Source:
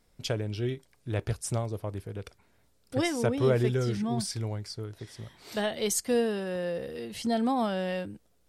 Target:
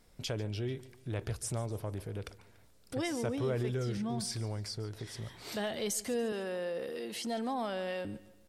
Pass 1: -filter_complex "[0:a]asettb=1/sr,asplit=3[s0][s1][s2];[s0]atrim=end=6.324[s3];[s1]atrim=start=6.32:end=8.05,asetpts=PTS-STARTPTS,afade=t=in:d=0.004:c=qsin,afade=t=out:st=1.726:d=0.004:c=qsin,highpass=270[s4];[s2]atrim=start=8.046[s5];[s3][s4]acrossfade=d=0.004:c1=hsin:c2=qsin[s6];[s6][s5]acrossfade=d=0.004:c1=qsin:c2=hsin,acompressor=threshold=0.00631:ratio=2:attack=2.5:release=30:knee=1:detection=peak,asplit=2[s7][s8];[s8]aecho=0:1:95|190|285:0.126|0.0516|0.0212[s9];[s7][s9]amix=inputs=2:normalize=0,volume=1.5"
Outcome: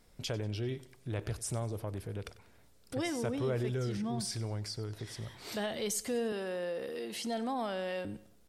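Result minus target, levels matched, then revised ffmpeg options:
echo 49 ms early
-filter_complex "[0:a]asettb=1/sr,asplit=3[s0][s1][s2];[s0]atrim=end=6.324[s3];[s1]atrim=start=6.32:end=8.05,asetpts=PTS-STARTPTS,afade=t=in:d=0.004:c=qsin,afade=t=out:st=1.726:d=0.004:c=qsin,highpass=270[s4];[s2]atrim=start=8.046[s5];[s3][s4]acrossfade=d=0.004:c1=hsin:c2=qsin[s6];[s6][s5]acrossfade=d=0.004:c1=qsin:c2=hsin,acompressor=threshold=0.00631:ratio=2:attack=2.5:release=30:knee=1:detection=peak,asplit=2[s7][s8];[s8]aecho=0:1:144|288|432:0.126|0.0516|0.0212[s9];[s7][s9]amix=inputs=2:normalize=0,volume=1.5"

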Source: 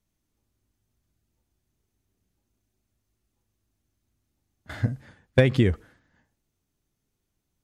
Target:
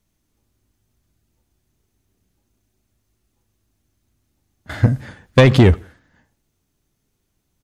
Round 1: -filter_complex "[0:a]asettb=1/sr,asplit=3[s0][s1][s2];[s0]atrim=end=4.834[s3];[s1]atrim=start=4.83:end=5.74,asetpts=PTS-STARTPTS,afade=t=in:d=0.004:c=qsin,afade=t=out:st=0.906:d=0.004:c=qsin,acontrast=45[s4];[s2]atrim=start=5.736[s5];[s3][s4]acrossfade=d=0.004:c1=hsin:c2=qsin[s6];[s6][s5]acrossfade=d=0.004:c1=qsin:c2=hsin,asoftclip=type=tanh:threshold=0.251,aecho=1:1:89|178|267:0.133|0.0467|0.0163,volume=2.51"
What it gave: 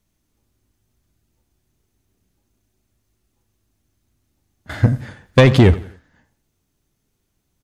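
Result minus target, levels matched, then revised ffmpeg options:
echo-to-direct +8.5 dB
-filter_complex "[0:a]asettb=1/sr,asplit=3[s0][s1][s2];[s0]atrim=end=4.834[s3];[s1]atrim=start=4.83:end=5.74,asetpts=PTS-STARTPTS,afade=t=in:d=0.004:c=qsin,afade=t=out:st=0.906:d=0.004:c=qsin,acontrast=45[s4];[s2]atrim=start=5.736[s5];[s3][s4]acrossfade=d=0.004:c1=hsin:c2=qsin[s6];[s6][s5]acrossfade=d=0.004:c1=qsin:c2=hsin,asoftclip=type=tanh:threshold=0.251,aecho=1:1:89|178:0.0501|0.0175,volume=2.51"

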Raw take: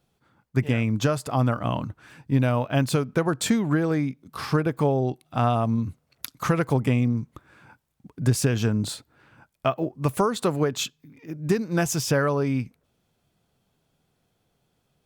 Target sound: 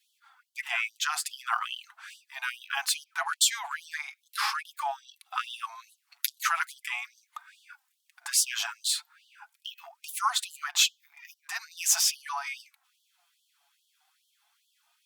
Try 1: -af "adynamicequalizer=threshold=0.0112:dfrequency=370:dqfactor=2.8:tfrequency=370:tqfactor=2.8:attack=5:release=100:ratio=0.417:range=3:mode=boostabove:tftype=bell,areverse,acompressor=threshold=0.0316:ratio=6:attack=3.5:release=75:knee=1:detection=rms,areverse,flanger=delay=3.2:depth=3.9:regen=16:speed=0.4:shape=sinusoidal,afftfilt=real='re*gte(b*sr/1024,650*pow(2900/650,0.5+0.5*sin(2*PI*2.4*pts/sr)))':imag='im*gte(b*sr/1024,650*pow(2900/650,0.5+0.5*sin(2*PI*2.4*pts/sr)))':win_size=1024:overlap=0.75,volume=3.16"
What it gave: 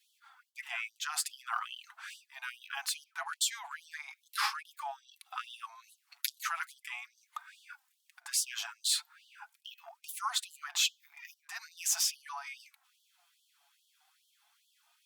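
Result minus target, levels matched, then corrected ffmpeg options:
compression: peak gain reduction +8.5 dB
-af "adynamicequalizer=threshold=0.0112:dfrequency=370:dqfactor=2.8:tfrequency=370:tqfactor=2.8:attack=5:release=100:ratio=0.417:range=3:mode=boostabove:tftype=bell,areverse,acompressor=threshold=0.1:ratio=6:attack=3.5:release=75:knee=1:detection=rms,areverse,flanger=delay=3.2:depth=3.9:regen=16:speed=0.4:shape=sinusoidal,afftfilt=real='re*gte(b*sr/1024,650*pow(2900/650,0.5+0.5*sin(2*PI*2.4*pts/sr)))':imag='im*gte(b*sr/1024,650*pow(2900/650,0.5+0.5*sin(2*PI*2.4*pts/sr)))':win_size=1024:overlap=0.75,volume=3.16"

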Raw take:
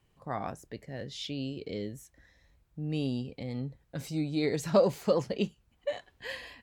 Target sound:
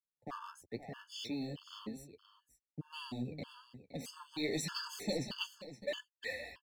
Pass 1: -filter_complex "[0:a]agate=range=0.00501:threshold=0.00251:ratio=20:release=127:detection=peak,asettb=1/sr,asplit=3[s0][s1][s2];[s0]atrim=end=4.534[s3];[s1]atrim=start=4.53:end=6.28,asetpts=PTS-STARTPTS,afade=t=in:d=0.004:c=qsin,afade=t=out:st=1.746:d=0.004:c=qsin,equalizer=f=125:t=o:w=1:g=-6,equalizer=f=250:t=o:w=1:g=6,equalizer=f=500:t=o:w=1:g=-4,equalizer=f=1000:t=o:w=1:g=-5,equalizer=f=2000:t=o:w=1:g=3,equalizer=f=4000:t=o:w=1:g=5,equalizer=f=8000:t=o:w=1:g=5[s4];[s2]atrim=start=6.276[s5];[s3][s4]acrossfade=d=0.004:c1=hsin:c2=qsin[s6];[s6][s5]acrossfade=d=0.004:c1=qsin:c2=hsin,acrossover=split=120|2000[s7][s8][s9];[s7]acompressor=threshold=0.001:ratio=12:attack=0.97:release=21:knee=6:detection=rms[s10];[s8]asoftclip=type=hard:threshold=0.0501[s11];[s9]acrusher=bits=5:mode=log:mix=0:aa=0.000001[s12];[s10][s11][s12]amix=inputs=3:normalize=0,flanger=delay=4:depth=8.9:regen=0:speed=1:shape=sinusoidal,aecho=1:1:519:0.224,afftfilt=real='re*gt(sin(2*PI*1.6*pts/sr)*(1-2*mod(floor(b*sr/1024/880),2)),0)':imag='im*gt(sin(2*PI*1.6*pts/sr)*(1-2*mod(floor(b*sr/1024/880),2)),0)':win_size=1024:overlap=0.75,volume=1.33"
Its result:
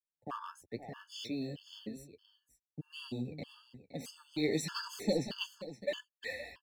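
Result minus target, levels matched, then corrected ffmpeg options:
hard clipper: distortion -6 dB
-filter_complex "[0:a]agate=range=0.00501:threshold=0.00251:ratio=20:release=127:detection=peak,asettb=1/sr,asplit=3[s0][s1][s2];[s0]atrim=end=4.534[s3];[s1]atrim=start=4.53:end=6.28,asetpts=PTS-STARTPTS,afade=t=in:d=0.004:c=qsin,afade=t=out:st=1.746:d=0.004:c=qsin,equalizer=f=125:t=o:w=1:g=-6,equalizer=f=250:t=o:w=1:g=6,equalizer=f=500:t=o:w=1:g=-4,equalizer=f=1000:t=o:w=1:g=-5,equalizer=f=2000:t=o:w=1:g=3,equalizer=f=4000:t=o:w=1:g=5,equalizer=f=8000:t=o:w=1:g=5[s4];[s2]atrim=start=6.276[s5];[s3][s4]acrossfade=d=0.004:c1=hsin:c2=qsin[s6];[s6][s5]acrossfade=d=0.004:c1=qsin:c2=hsin,acrossover=split=120|2000[s7][s8][s9];[s7]acompressor=threshold=0.001:ratio=12:attack=0.97:release=21:knee=6:detection=rms[s10];[s8]asoftclip=type=hard:threshold=0.0211[s11];[s9]acrusher=bits=5:mode=log:mix=0:aa=0.000001[s12];[s10][s11][s12]amix=inputs=3:normalize=0,flanger=delay=4:depth=8.9:regen=0:speed=1:shape=sinusoidal,aecho=1:1:519:0.224,afftfilt=real='re*gt(sin(2*PI*1.6*pts/sr)*(1-2*mod(floor(b*sr/1024/880),2)),0)':imag='im*gt(sin(2*PI*1.6*pts/sr)*(1-2*mod(floor(b*sr/1024/880),2)),0)':win_size=1024:overlap=0.75,volume=1.33"

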